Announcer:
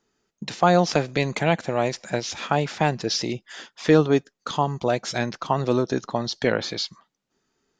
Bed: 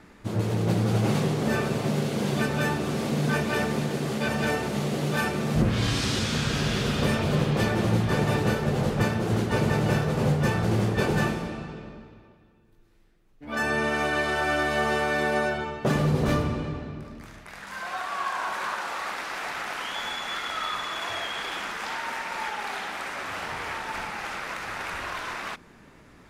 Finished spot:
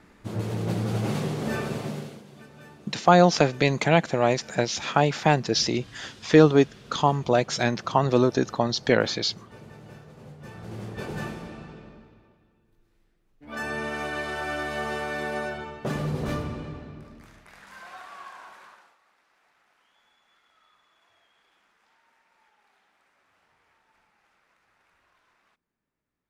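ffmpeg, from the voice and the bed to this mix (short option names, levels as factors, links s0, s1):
-filter_complex "[0:a]adelay=2450,volume=1.19[s0];[1:a]volume=4.73,afade=t=out:st=1.74:d=0.49:silence=0.112202,afade=t=in:st=10.37:d=1.32:silence=0.141254,afade=t=out:st=17.05:d=1.92:silence=0.0375837[s1];[s0][s1]amix=inputs=2:normalize=0"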